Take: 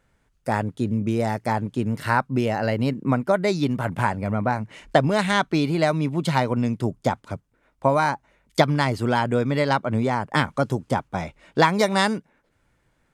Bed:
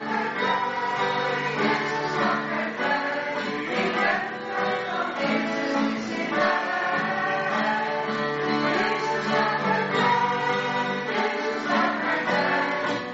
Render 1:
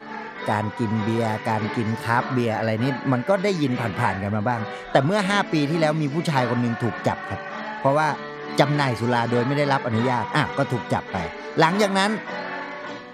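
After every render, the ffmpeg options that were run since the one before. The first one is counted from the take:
-filter_complex "[1:a]volume=-7.5dB[a];[0:a][a]amix=inputs=2:normalize=0"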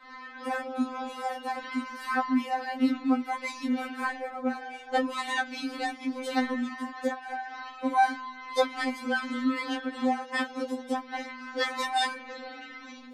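-af "flanger=delay=9.1:depth=2.8:regen=61:speed=0.57:shape=triangular,afftfilt=real='re*3.46*eq(mod(b,12),0)':imag='im*3.46*eq(mod(b,12),0)':win_size=2048:overlap=0.75"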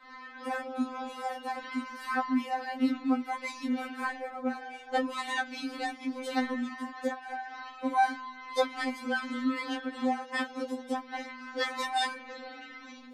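-af "volume=-2.5dB"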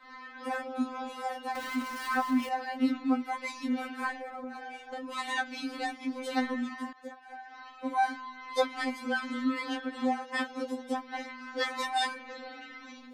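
-filter_complex "[0:a]asettb=1/sr,asplit=3[a][b][c];[a]atrim=end=1.554[d];[b]atrim=start=1.55:end=2.49,asetpts=PTS-STARTPTS,afade=t=in:d=0.004:c=qsin,afade=t=out:st=0.936:d=0.004:c=qsin,aeval=exprs='val(0)+0.5*0.0119*sgn(val(0))':c=same[e];[c]atrim=start=2.486[f];[d][e]acrossfade=d=0.004:c1=hsin:c2=qsin[g];[g][f]acrossfade=d=0.004:c1=qsin:c2=hsin,asettb=1/sr,asplit=3[h][i][j];[h]atrim=end=4.184[k];[i]atrim=start=4.18:end=5.13,asetpts=PTS-STARTPTS,afade=t=in:d=0.004:c=qsin,afade=t=out:st=0.946:d=0.004:c=qsin,acompressor=threshold=-35dB:ratio=12:attack=3.2:release=140:knee=1:detection=peak[l];[j]atrim=start=5.126[m];[k][l]acrossfade=d=0.004:c1=hsin:c2=qsin[n];[n][m]acrossfade=d=0.004:c1=qsin:c2=hsin,asplit=2[o][p];[o]atrim=end=6.93,asetpts=PTS-STARTPTS,afade=t=out:st=6.926:d=0.004:c=hsin:silence=0.177828[q];[p]atrim=start=6.93,asetpts=PTS-STARTPTS,afade=t=in:d=1.48:silence=0.177828[r];[q][r]concat=n=2:v=0:a=1"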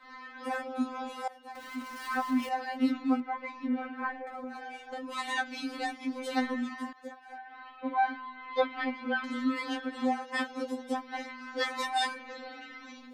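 -filter_complex "[0:a]asettb=1/sr,asplit=3[a][b][c];[a]atrim=end=3.204[d];[b]atrim=start=3.2:end=4.27,asetpts=PTS-STARTPTS,afade=t=in:d=0.004:c=qsin,afade=t=out:st=1.066:d=0.004:c=qsin,lowpass=1.9k[e];[c]atrim=start=4.266[f];[d][e]acrossfade=d=0.004:c1=hsin:c2=qsin[g];[g][f]acrossfade=d=0.004:c1=qsin:c2=hsin,asettb=1/sr,asplit=3[h][i][j];[h]atrim=end=7.384[k];[i]atrim=start=7.38:end=9.24,asetpts=PTS-STARTPTS,afade=t=in:d=0.004:c=qsin,afade=t=out:st=1.856:d=0.004:c=qsin,lowpass=f=3.5k:w=0.5412,lowpass=f=3.5k:w=1.3066[l];[j]atrim=start=9.236[m];[k][l]acrossfade=d=0.004:c1=hsin:c2=qsin[n];[n][m]acrossfade=d=0.004:c1=qsin:c2=hsin,asplit=2[o][p];[o]atrim=end=1.28,asetpts=PTS-STARTPTS,afade=t=out:st=1.276:d=0.004:c=hsin:silence=0.158489[q];[p]atrim=start=1.28,asetpts=PTS-STARTPTS,afade=t=in:d=1.25:silence=0.158489[r];[q][r]concat=n=2:v=0:a=1"

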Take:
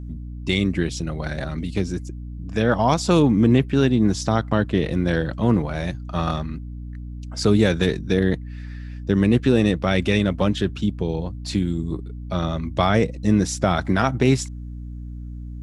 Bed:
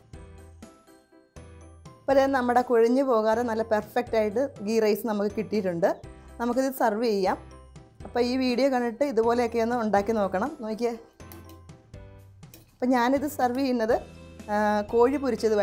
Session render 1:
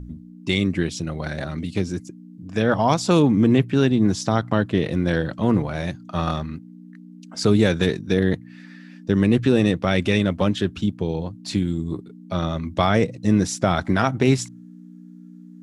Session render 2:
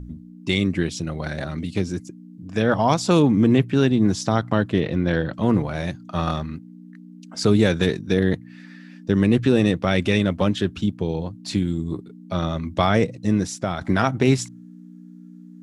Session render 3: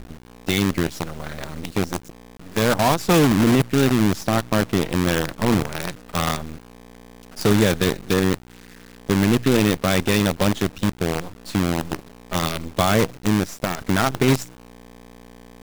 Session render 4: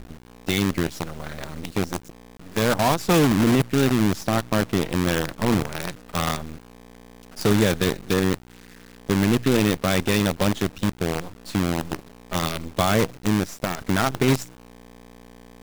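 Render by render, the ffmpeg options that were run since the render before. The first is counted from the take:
-af "bandreject=f=60:t=h:w=4,bandreject=f=120:t=h:w=4"
-filter_complex "[0:a]asettb=1/sr,asplit=3[a][b][c];[a]atrim=end=4.804[d];[b]atrim=start=4.8:end=5.34,asetpts=PTS-STARTPTS,afade=t=in:d=0.004:c=qsin,afade=t=out:st=0.536:d=0.004:c=qsin,lowpass=4.4k[e];[c]atrim=start=5.336[f];[d][e]acrossfade=d=0.004:c1=hsin:c2=qsin[g];[g][f]acrossfade=d=0.004:c1=qsin:c2=hsin,asplit=2[h][i];[h]atrim=end=13.81,asetpts=PTS-STARTPTS,afade=t=out:st=13.01:d=0.8:silence=0.421697[j];[i]atrim=start=13.81,asetpts=PTS-STARTPTS,afade=t=in:d=0.004:c=hsin:silence=0.421697[k];[j][k]concat=n=2:v=0:a=1"
-af "acrusher=bits=4:dc=4:mix=0:aa=0.000001"
-af "volume=-2dB"

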